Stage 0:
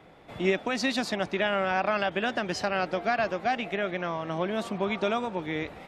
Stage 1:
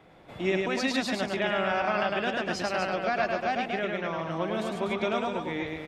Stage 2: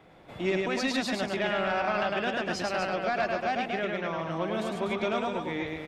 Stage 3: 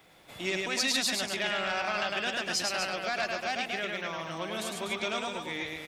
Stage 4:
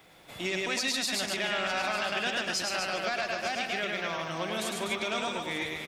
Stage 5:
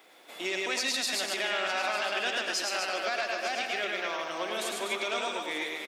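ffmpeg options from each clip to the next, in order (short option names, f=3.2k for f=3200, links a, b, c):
-af "aecho=1:1:105|244.9:0.708|0.447,volume=-2.5dB"
-af "asoftclip=type=tanh:threshold=-17dB"
-af "crystalizer=i=8:c=0,volume=-7.5dB"
-af "aecho=1:1:154|897:0.237|0.168,alimiter=limit=-21.5dB:level=0:latency=1:release=93,volume=2dB"
-af "highpass=f=280:w=0.5412,highpass=f=280:w=1.3066,aecho=1:1:85:0.251"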